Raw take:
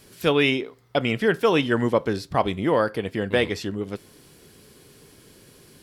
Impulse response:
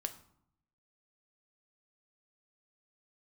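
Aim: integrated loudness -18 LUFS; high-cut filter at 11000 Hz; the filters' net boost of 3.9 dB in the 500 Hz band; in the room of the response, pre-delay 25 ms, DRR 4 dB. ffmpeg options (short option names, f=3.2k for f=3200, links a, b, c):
-filter_complex "[0:a]lowpass=11k,equalizer=f=500:t=o:g=4.5,asplit=2[a][b];[1:a]atrim=start_sample=2205,adelay=25[c];[b][c]afir=irnorm=-1:irlink=0,volume=-3.5dB[d];[a][d]amix=inputs=2:normalize=0,volume=1.5dB"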